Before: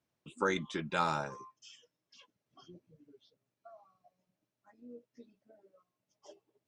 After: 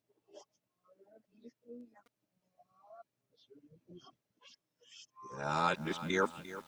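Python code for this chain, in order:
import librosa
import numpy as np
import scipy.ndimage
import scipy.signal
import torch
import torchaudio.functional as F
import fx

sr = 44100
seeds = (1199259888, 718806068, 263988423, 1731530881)

y = x[::-1].copy()
y = fx.echo_crushed(y, sr, ms=347, feedback_pct=55, bits=8, wet_db=-14)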